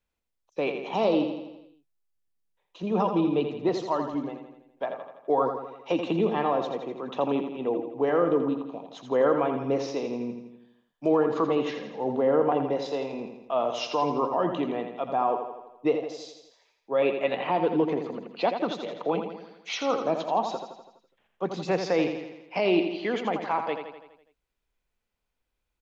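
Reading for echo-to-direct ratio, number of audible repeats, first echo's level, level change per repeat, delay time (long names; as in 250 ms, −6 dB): −6.0 dB, 6, −7.5 dB, −5.0 dB, 83 ms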